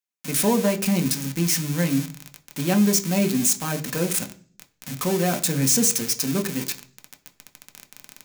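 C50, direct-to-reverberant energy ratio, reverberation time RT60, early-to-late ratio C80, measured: 16.5 dB, 4.5 dB, 0.45 s, 20.0 dB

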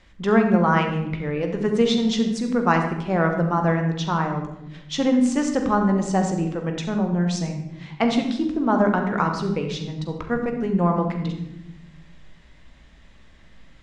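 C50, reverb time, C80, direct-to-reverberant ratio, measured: 6.0 dB, 0.95 s, 8.0 dB, 3.5 dB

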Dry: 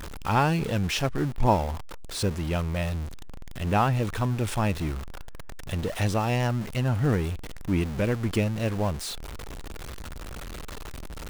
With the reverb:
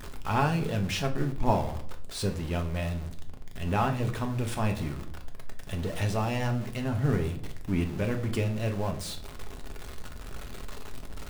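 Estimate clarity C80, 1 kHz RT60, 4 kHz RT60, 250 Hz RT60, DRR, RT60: 16.5 dB, 0.55 s, 0.40 s, 0.90 s, 4.0 dB, 0.60 s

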